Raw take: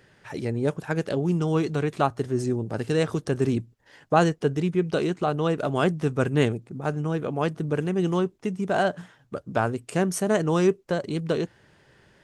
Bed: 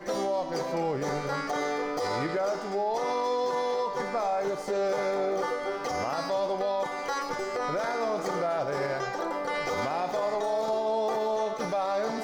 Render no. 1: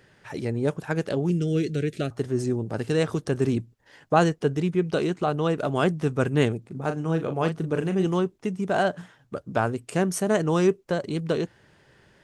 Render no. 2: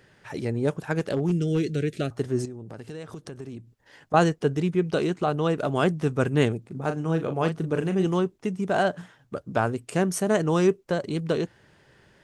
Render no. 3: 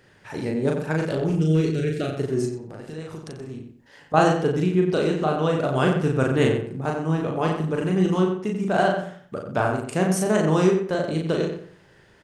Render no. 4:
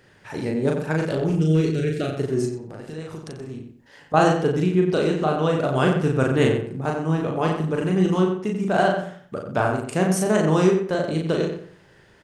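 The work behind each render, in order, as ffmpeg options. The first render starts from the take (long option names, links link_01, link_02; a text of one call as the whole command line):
ffmpeg -i in.wav -filter_complex "[0:a]asettb=1/sr,asplit=3[link_01][link_02][link_03];[link_01]atrim=end=1.304[link_04];[link_02]atrim=start=1.3:end=2.11,asetpts=PTS-STARTPTS,afade=type=in:duration=0.004:curve=qsin,afade=type=out:start_time=0.806:duration=0.004:curve=qsin,asuperstop=centerf=950:order=4:qfactor=0.8[link_05];[link_03]atrim=start=2.106[link_06];[link_04][link_05]acrossfade=duration=0.004:curve1=hsin:curve2=qsin[link_07];[link_07][link_06]acrossfade=duration=0.004:curve1=qsin:curve2=hsin,asettb=1/sr,asplit=3[link_08][link_09][link_10];[link_08]atrim=end=6.614[link_11];[link_09]atrim=start=6.61:end=8.06,asetpts=PTS-STARTPTS,afade=type=in:duration=0.004:curve=qsin,afade=type=out:start_time=1.446:duration=0.004:curve=qsin,asplit=2[link_12][link_13];[link_13]adelay=37,volume=-8dB[link_14];[link_12][link_14]amix=inputs=2:normalize=0,atrim=end_sample=63945[link_15];[link_10]atrim=start=8.056[link_16];[link_11][link_15]acrossfade=duration=0.004:curve1=hsin:curve2=qsin[link_17];[link_17][link_16]acrossfade=duration=0.004:curve1=qsin:curve2=hsin" out.wav
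ffmpeg -i in.wav -filter_complex "[0:a]asettb=1/sr,asplit=3[link_01][link_02][link_03];[link_01]atrim=end=0.994[link_04];[link_02]atrim=start=0.99:end=1.7,asetpts=PTS-STARTPTS,afade=type=in:duration=0.004:curve=qsin,afade=type=out:start_time=0.706:duration=0.004:curve=qsin,asoftclip=type=hard:threshold=-17.5dB[link_05];[link_03]atrim=start=1.696[link_06];[link_04][link_05]acrossfade=duration=0.004:curve1=hsin:curve2=qsin[link_07];[link_07][link_06]acrossfade=duration=0.004:curve1=qsin:curve2=hsin,asettb=1/sr,asplit=3[link_08][link_09][link_10];[link_08]atrim=end=2.454[link_11];[link_09]atrim=start=2.45:end=4.14,asetpts=PTS-STARTPTS,afade=type=in:duration=0.004:curve=qsin,afade=type=out:start_time=1.686:duration=0.004:curve=qsin,acompressor=threshold=-37dB:ratio=4:attack=3.2:release=140:knee=1:detection=peak[link_12];[link_10]atrim=start=4.136[link_13];[link_11][link_12]acrossfade=duration=0.004:curve1=hsin:curve2=qsin[link_14];[link_14][link_13]acrossfade=duration=0.004:curve1=qsin:curve2=hsin" out.wav
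ffmpeg -i in.wav -filter_complex "[0:a]asplit=2[link_01][link_02];[link_02]adelay=38,volume=-2.5dB[link_03];[link_01][link_03]amix=inputs=2:normalize=0,asplit=2[link_04][link_05];[link_05]adelay=90,lowpass=frequency=3100:poles=1,volume=-6dB,asplit=2[link_06][link_07];[link_07]adelay=90,lowpass=frequency=3100:poles=1,volume=0.32,asplit=2[link_08][link_09];[link_09]adelay=90,lowpass=frequency=3100:poles=1,volume=0.32,asplit=2[link_10][link_11];[link_11]adelay=90,lowpass=frequency=3100:poles=1,volume=0.32[link_12];[link_04][link_06][link_08][link_10][link_12]amix=inputs=5:normalize=0" out.wav
ffmpeg -i in.wav -af "volume=1dB,alimiter=limit=-3dB:level=0:latency=1" out.wav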